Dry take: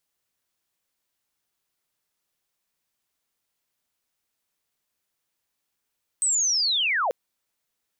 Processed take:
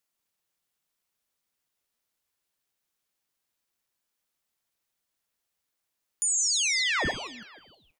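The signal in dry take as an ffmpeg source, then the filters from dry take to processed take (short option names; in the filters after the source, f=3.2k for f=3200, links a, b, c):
-f lavfi -i "aevalsrc='pow(10,(-19.5-1.5*t/0.89)/20)*sin(2*PI*(8300*t-7850*t*t/(2*0.89)))':d=0.89:s=44100"
-filter_complex "[0:a]bandreject=f=161.7:t=h:w=4,bandreject=f=323.4:t=h:w=4,bandreject=f=485.1:t=h:w=4,bandreject=f=646.8:t=h:w=4,bandreject=f=808.5:t=h:w=4,bandreject=f=970.2:t=h:w=4,bandreject=f=1.1319k:t=h:w=4,bandreject=f=1.2936k:t=h:w=4,bandreject=f=1.4553k:t=h:w=4,bandreject=f=1.617k:t=h:w=4,bandreject=f=1.7787k:t=h:w=4,bandreject=f=1.9404k:t=h:w=4,bandreject=f=2.1021k:t=h:w=4,asplit=6[a][b][c][d][e][f];[b]adelay=159,afreqshift=150,volume=-11dB[g];[c]adelay=318,afreqshift=300,volume=-17.4dB[h];[d]adelay=477,afreqshift=450,volume=-23.8dB[i];[e]adelay=636,afreqshift=600,volume=-30.1dB[j];[f]adelay=795,afreqshift=750,volume=-36.5dB[k];[a][g][h][i][j][k]amix=inputs=6:normalize=0,aeval=exprs='val(0)*sin(2*PI*1100*n/s+1100*0.7/1.8*sin(2*PI*1.8*n/s))':c=same"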